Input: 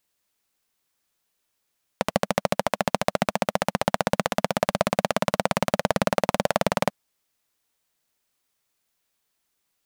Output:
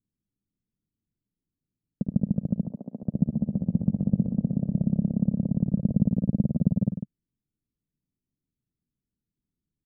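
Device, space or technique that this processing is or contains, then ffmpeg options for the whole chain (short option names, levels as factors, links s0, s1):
the neighbour's flat through the wall: -filter_complex "[0:a]lowpass=f=270:w=0.5412,lowpass=f=270:w=1.3066,equalizer=f=140:t=o:w=0.63:g=3,asettb=1/sr,asplit=3[s0][s1][s2];[s0]atrim=end=2.614[s3];[s1]atrim=start=2.61:end=3.03,asetpts=PTS-STARTPTS,afade=t=in:d=0.004:c=qsin,afade=t=out:st=0.416:d=0.004:c=qsin,highpass=390[s4];[s2]atrim=start=3.026[s5];[s3][s4]acrossfade=d=0.004:c1=hsin:c2=qsin[s6];[s6][s5]acrossfade=d=0.004:c1=qsin:c2=hsin,aecho=1:1:54|107|148:0.188|0.1|0.355,volume=1.88"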